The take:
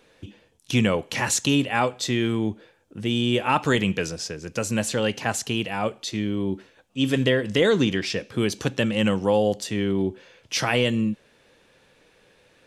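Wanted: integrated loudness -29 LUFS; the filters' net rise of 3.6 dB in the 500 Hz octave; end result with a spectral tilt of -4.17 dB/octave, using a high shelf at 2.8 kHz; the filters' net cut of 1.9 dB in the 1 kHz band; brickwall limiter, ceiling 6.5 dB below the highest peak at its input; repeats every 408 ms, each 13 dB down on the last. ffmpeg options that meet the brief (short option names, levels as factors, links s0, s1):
-af "equalizer=f=500:t=o:g=5,equalizer=f=1000:t=o:g=-5,highshelf=f=2800:g=4,alimiter=limit=0.237:level=0:latency=1,aecho=1:1:408|816|1224:0.224|0.0493|0.0108,volume=0.596"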